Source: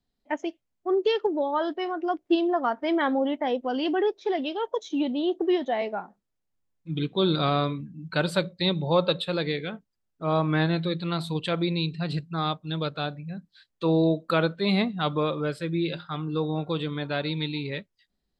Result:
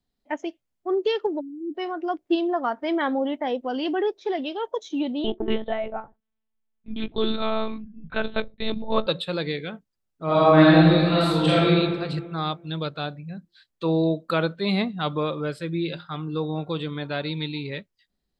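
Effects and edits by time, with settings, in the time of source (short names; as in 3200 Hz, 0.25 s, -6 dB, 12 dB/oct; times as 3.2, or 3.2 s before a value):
1.4–1.75 spectral delete 380–7200 Hz
5.24–9.07 monotone LPC vocoder at 8 kHz 220 Hz
10.25–11.68 reverb throw, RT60 1.6 s, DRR -8.5 dB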